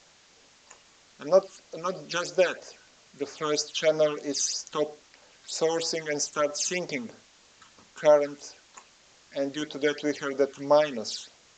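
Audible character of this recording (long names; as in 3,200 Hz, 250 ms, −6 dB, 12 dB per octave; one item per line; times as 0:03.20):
phaser sweep stages 8, 3.1 Hz, lowest notch 600–3,300 Hz
a quantiser's noise floor 10 bits, dither triangular
AAC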